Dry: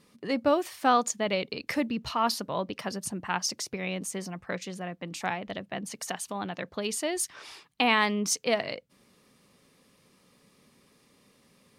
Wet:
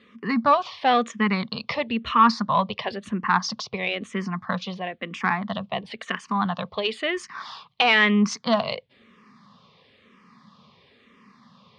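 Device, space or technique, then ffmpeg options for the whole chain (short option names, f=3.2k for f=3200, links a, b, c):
barber-pole phaser into a guitar amplifier: -filter_complex "[0:a]asplit=2[a][b];[b]afreqshift=-1[c];[a][c]amix=inputs=2:normalize=1,asoftclip=type=tanh:threshold=-21dB,highpass=78,equalizer=f=220:t=q:w=4:g=7,equalizer=f=310:t=q:w=4:g=-10,equalizer=f=550:t=q:w=4:g=-3,equalizer=f=1.1k:t=q:w=4:g=10,equalizer=f=1.9k:t=q:w=4:g=3,equalizer=f=3.4k:t=q:w=4:g=4,lowpass=f=4.5k:w=0.5412,lowpass=f=4.5k:w=1.3066,volume=9dB"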